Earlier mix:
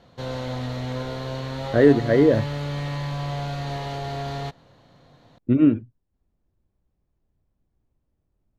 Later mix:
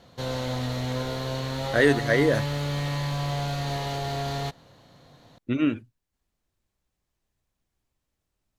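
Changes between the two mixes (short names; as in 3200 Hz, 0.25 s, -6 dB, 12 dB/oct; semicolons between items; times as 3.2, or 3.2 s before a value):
speech: add tilt shelf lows -9 dB, about 940 Hz; master: remove LPF 3500 Hz 6 dB/oct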